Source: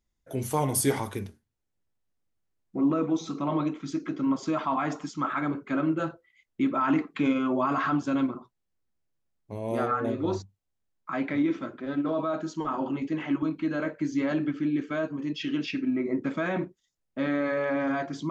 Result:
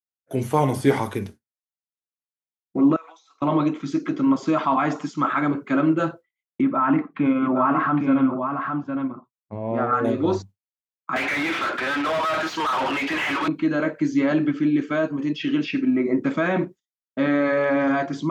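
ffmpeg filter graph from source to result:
-filter_complex "[0:a]asettb=1/sr,asplit=3[a][b][c];[a]atrim=end=2.964[d];[b]atrim=start=2.96:end=3.42,asetpts=PTS-STARTPTS,afade=t=in:d=0.004:c=qsin,afade=t=out:st=0.456:d=0.004:c=qsin,highpass=f=820:w=0.5412,highpass=f=820:w=1.3066,acompressor=threshold=-46dB:ratio=5:attack=3.2:release=140:knee=1:detection=peak[e];[c]atrim=start=3.416[f];[d][e]acrossfade=d=0.004:c1=hsin:c2=qsin[g];[g][f]acrossfade=d=0.004:c1=qsin:c2=hsin,asettb=1/sr,asplit=3[h][i][j];[h]atrim=end=6.614[k];[i]atrim=start=6.61:end=9.93,asetpts=PTS-STARTPTS,afade=t=in:d=0.004:c=qsin,afade=t=out:st=3.316:d=0.004:c=qsin,lowpass=1.6k,equalizer=f=410:w=1.8:g=-6.5,aecho=1:1:811:0.562,atrim=end_sample=146412[l];[j]atrim=start=9.926[m];[k][l]acrossfade=d=0.004:c1=hsin:c2=qsin[n];[n][m]acrossfade=d=0.004:c1=qsin:c2=hsin,asettb=1/sr,asplit=3[o][p][q];[o]atrim=end=11.164[r];[p]atrim=start=11.16:end=13.48,asetpts=PTS-STARTPTS,afade=t=in:d=0.004:c=qsin,afade=t=out:st=2.316:d=0.004:c=qsin,bandpass=f=4.3k:t=q:w=0.67,asplit=2[s][t];[t]highpass=f=720:p=1,volume=39dB,asoftclip=type=tanh:threshold=-23dB[u];[s][u]amix=inputs=2:normalize=0,lowpass=f=3.8k:p=1,volume=-6dB[v];[q]atrim=start=13.476[w];[r][v]acrossfade=d=0.004:c1=hsin:c2=qsin[x];[x][w]acrossfade=d=0.004:c1=qsin:c2=hsin,acrossover=split=3200[y][z];[z]acompressor=threshold=-49dB:ratio=4:attack=1:release=60[aa];[y][aa]amix=inputs=2:normalize=0,agate=range=-33dB:threshold=-40dB:ratio=3:detection=peak,highpass=100,volume=7dB"

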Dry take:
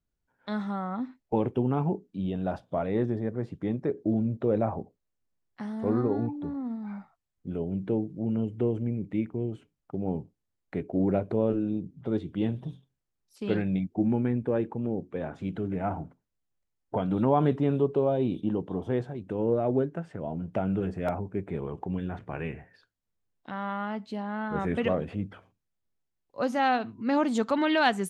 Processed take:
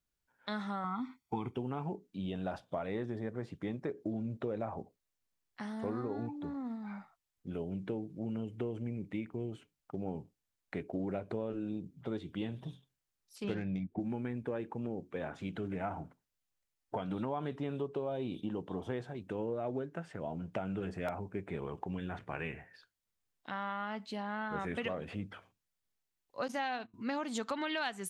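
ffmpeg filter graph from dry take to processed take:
-filter_complex "[0:a]asettb=1/sr,asplit=3[a][b][c];[a]atrim=end=0.844[d];[b]atrim=start=0.84:end=1.56,asetpts=PTS-STARTPTS,afade=t=in:d=0.004:c=qsin,afade=t=out:st=0.716:d=0.004:c=qsin,highpass=48,aecho=1:1:0.9:0.96,atrim=end_sample=31752[e];[c]atrim=start=1.556[f];[d][e]acrossfade=d=0.004:c1=hsin:c2=qsin[g];[g][f]acrossfade=d=0.004:c1=qsin:c2=hsin,asettb=1/sr,asplit=3[h][i][j];[h]atrim=end=13.444[k];[i]atrim=start=13.44:end=14,asetpts=PTS-STARTPTS,afade=t=in:d=0.004:c=qsin,afade=t=out:st=0.556:d=0.004:c=qsin,adynamicsmooth=sensitivity=5.5:basefreq=2.9k,lowshelf=f=320:g=6.5[l];[j]atrim=start=13.996[m];[k][l]acrossfade=d=0.004:c1=hsin:c2=qsin[n];[n][m]acrossfade=d=0.004:c1=qsin:c2=hsin,asettb=1/sr,asplit=3[o][p][q];[o]atrim=end=26.484[r];[p]atrim=start=26.48:end=26.94,asetpts=PTS-STARTPTS,afade=t=in:d=0.004:c=qsin,afade=t=out:st=0.456:d=0.004:c=qsin,agate=range=-21dB:threshold=-36dB:ratio=16:release=100:detection=peak,bandreject=f=1.3k:w=11[s];[q]atrim=start=26.936[t];[r][s]acrossfade=d=0.004:c1=hsin:c2=qsin[u];[u][t]acrossfade=d=0.004:c1=qsin:c2=hsin,tiltshelf=f=870:g=-5,acompressor=threshold=-31dB:ratio=6,volume=-2dB"

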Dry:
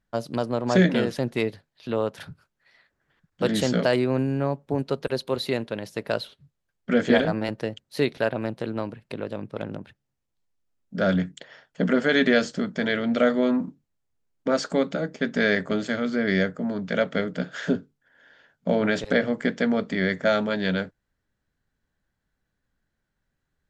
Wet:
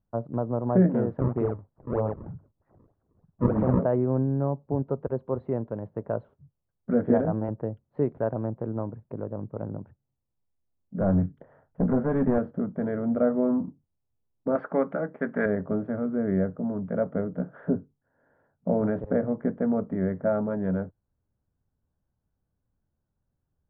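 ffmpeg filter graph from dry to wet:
-filter_complex "[0:a]asettb=1/sr,asplit=3[a][b][c];[a]atrim=end=1.184[d];[b]atrim=start=1.18:end=3.79,asetpts=PTS-STARTPTS,afade=t=in:d=0.004:c=qsin,afade=t=out:st=2.606:d=0.004:c=qsin,asplit=2[e][f];[f]adelay=47,volume=-2.5dB[g];[e][g]amix=inputs=2:normalize=0,atrim=end_sample=115101,acrusher=samples=34:mix=1:aa=0.000001:lfo=1:lforange=54.4:lforate=3.2[h];[c]atrim=start=3.786[i];[d][h]acrossfade=d=0.004:c1=hsin:c2=qsin[j];[j][i]acrossfade=d=0.004:c1=qsin:c2=hsin,asettb=1/sr,asplit=3[k][l][m];[k]atrim=end=11.004[n];[l]atrim=start=11:end=12.38,asetpts=PTS-STARTPTS,afade=t=in:d=0.004:c=qsin,afade=t=out:st=1.376:d=0.004:c=qsin,lowshelf=f=130:g=10,asplit=2[o][p];[p]adelay=30,volume=-13dB[q];[o][q]amix=inputs=2:normalize=0,atrim=end_sample=60858,aeval=exprs='clip(val(0),-1,0.0891)':c=same[r];[m]atrim=start=12.376[s];[n][r]acrossfade=d=0.004:c1=hsin:c2=qsin[t];[t][s]acrossfade=d=0.004:c1=qsin:c2=hsin,asettb=1/sr,asplit=3[u][v][w];[u]atrim=end=14.554[x];[v]atrim=start=14.55:end=15.46,asetpts=PTS-STARTPTS,afade=t=in:d=0.004:c=qsin,afade=t=out:st=0.906:d=0.004:c=qsin,highpass=f=230:p=1,equalizer=f=2.1k:t=o:w=2:g=14[y];[w]atrim=start=15.456[z];[x][y]acrossfade=d=0.004:c1=hsin:c2=qsin[aa];[aa][z]acrossfade=d=0.004:c1=qsin:c2=hsin,lowpass=f=1.1k:w=0.5412,lowpass=f=1.1k:w=1.3066,equalizer=f=91:t=o:w=1.3:g=8,volume=-3dB"

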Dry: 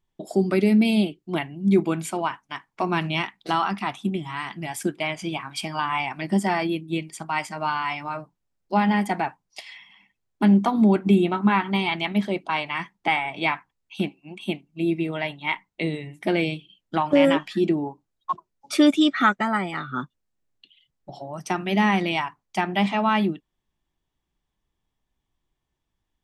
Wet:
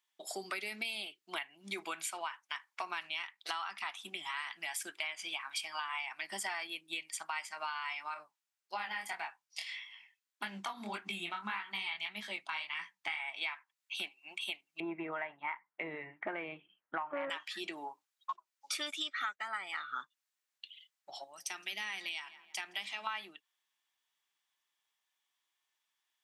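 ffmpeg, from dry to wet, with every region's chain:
-filter_complex "[0:a]asettb=1/sr,asplit=3[a][b][c];[a]atrim=end=8.144[d];[b]atrim=start=8.14:end=13.2,asetpts=PTS-STARTPTS,afade=t=in:d=0.004:c=qsin,afade=t=out:st=5.056:d=0.004:c=qsin,asubboost=boost=7.5:cutoff=170,flanger=delay=18:depth=7.8:speed=1.7[e];[c]atrim=start=13.196[f];[d][e]acrossfade=d=0.004:c1=hsin:c2=qsin[g];[g][f]acrossfade=d=0.004:c1=qsin:c2=hsin,asettb=1/sr,asplit=3[h][i][j];[h]atrim=end=14.804[k];[i]atrim=start=14.8:end=17.3,asetpts=PTS-STARTPTS,afade=t=in:d=0.004:c=qsin,afade=t=out:st=2.496:d=0.004:c=qsin,lowpass=f=1.7k:w=0.5412,lowpass=f=1.7k:w=1.3066,aemphasis=mode=reproduction:type=bsi,acontrast=38[l];[j]atrim=start=17.296[m];[k][l]acrossfade=d=0.004:c1=hsin:c2=qsin[n];[n][m]acrossfade=d=0.004:c1=qsin:c2=hsin,asettb=1/sr,asplit=3[o][p][q];[o]atrim=end=21.244[r];[p]atrim=start=21.24:end=23.07,asetpts=PTS-STARTPTS,afade=t=in:d=0.004:c=qsin,afade=t=out:st=1.826:d=0.004:c=qsin,highpass=190,equalizer=f=1k:t=o:w=2.6:g=-14,asplit=2[s][t];[t]adelay=166,lowpass=f=2.3k:p=1,volume=-19dB,asplit=2[u][v];[v]adelay=166,lowpass=f=2.3k:p=1,volume=0.48,asplit=2[w][x];[x]adelay=166,lowpass=f=2.3k:p=1,volume=0.48,asplit=2[y][z];[z]adelay=166,lowpass=f=2.3k:p=1,volume=0.48[aa];[s][u][w][y][aa]amix=inputs=5:normalize=0,atrim=end_sample=80703[ab];[q]atrim=start=23.066[ac];[r][ab]acrossfade=d=0.004:c1=hsin:c2=qsin[ad];[ad][ac]acrossfade=d=0.004:c1=qsin:c2=hsin,highpass=1.4k,acompressor=threshold=-40dB:ratio=6,volume=3.5dB"

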